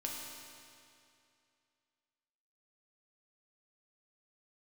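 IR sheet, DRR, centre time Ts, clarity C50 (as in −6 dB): −2.5 dB, 115 ms, 0.5 dB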